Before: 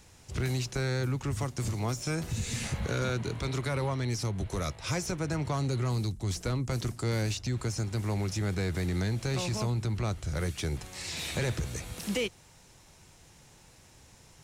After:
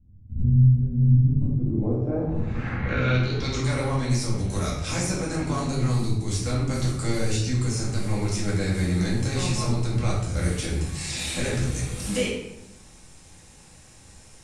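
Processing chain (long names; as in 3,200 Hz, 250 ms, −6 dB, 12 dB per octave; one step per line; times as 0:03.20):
low-pass filter sweep 120 Hz → 9,200 Hz, 0:01.09–0:03.79
amplitude modulation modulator 110 Hz, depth 35%
rectangular room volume 250 cubic metres, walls mixed, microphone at 2.2 metres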